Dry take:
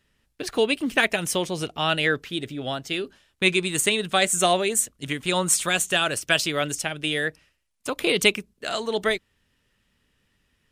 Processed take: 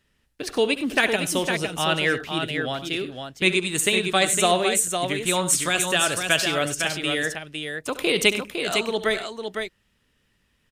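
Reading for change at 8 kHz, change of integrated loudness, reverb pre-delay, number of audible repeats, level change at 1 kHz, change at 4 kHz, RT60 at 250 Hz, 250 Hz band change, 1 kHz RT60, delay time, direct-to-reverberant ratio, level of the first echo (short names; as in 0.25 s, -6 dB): +1.0 dB, +1.0 dB, none, 2, +1.5 dB, +1.0 dB, none, +1.0 dB, none, 69 ms, none, -14.0 dB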